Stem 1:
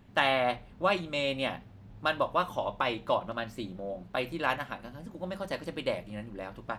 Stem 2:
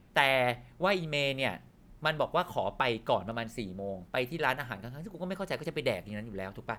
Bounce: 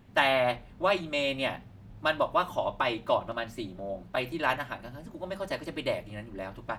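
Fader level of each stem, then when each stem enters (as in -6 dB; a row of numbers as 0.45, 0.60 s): +0.5, -6.0 dB; 0.00, 0.00 s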